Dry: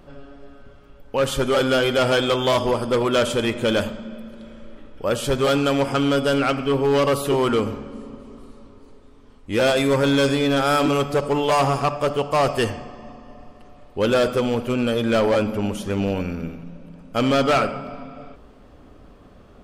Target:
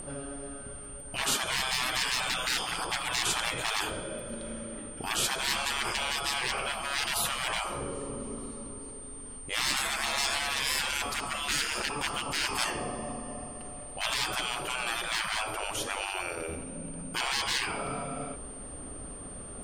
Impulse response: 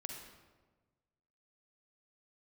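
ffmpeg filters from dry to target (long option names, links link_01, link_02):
-af "aeval=exprs='val(0)+0.0141*sin(2*PI*8900*n/s)':channel_layout=same,afftfilt=real='re*lt(hypot(re,im),0.1)':imag='im*lt(hypot(re,im),0.1)':win_size=1024:overlap=0.75,volume=3dB"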